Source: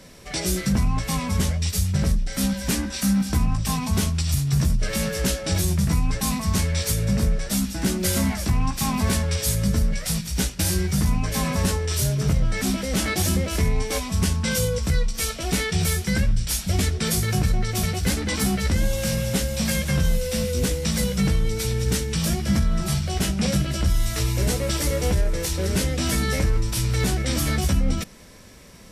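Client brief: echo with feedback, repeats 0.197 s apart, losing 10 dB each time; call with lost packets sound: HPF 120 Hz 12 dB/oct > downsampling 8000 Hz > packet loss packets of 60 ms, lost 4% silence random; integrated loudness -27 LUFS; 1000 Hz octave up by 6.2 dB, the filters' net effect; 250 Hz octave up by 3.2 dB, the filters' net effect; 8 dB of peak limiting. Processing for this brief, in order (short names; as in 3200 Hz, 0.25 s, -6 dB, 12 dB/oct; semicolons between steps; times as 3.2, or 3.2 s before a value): bell 250 Hz +5 dB; bell 1000 Hz +7.5 dB; limiter -15 dBFS; HPF 120 Hz 12 dB/oct; feedback echo 0.197 s, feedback 32%, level -10 dB; downsampling 8000 Hz; packet loss packets of 60 ms, lost 4% silence random; gain -0.5 dB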